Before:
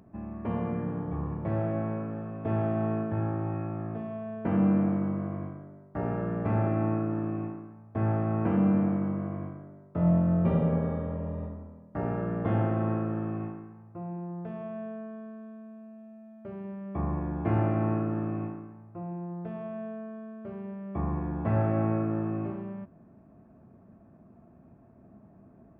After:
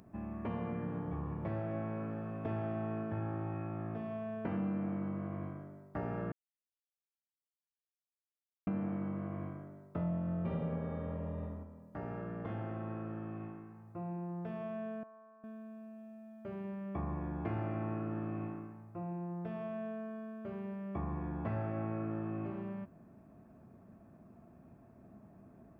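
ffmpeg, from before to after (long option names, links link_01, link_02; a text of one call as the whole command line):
ffmpeg -i in.wav -filter_complex "[0:a]asettb=1/sr,asplit=3[link_01][link_02][link_03];[link_01]atrim=end=11.634[link_04];[link_02]atrim=start=11.63:end=13.88,asetpts=PTS-STARTPTS,afade=type=in:duration=0.004:curve=qsin,afade=type=out:start_time=2.246:duration=0.004:curve=qsin,acompressor=threshold=-48dB:ratio=1.5:attack=3.2:release=140:knee=1:detection=peak[link_05];[link_03]atrim=start=13.876[link_06];[link_04][link_05]acrossfade=duration=0.004:curve1=hsin:curve2=qsin[link_07];[link_07][link_06]acrossfade=duration=0.004:curve1=qsin:curve2=hsin,asettb=1/sr,asplit=3[link_08][link_09][link_10];[link_08]atrim=end=15.034[link_11];[link_09]atrim=start=15.03:end=15.44,asetpts=PTS-STARTPTS,afade=type=in:duration=0.004:curve=qsin,afade=type=out:start_time=0.406:duration=0.004:curve=qsin,bandpass=frequency=940:width_type=q:width=3.3[link_12];[link_10]atrim=start=15.436[link_13];[link_11][link_12]acrossfade=duration=0.004:curve1=hsin:curve2=qsin[link_14];[link_14][link_13]acrossfade=duration=0.004:curve1=qsin:curve2=hsin,asplit=3[link_15][link_16][link_17];[link_15]atrim=end=6.32,asetpts=PTS-STARTPTS,afade=type=out:start_time=6.316:duration=0.004:curve=hsin[link_18];[link_16]atrim=start=6.32:end=8.67,asetpts=PTS-STARTPTS,volume=0[link_19];[link_17]atrim=start=8.67,asetpts=PTS-STARTPTS,afade=type=in:duration=0.004:curve=hsin[link_20];[link_18][link_19][link_20]concat=n=3:v=0:a=1,highshelf=frequency=2100:gain=8.5,acompressor=threshold=-33dB:ratio=3,volume=-3dB" out.wav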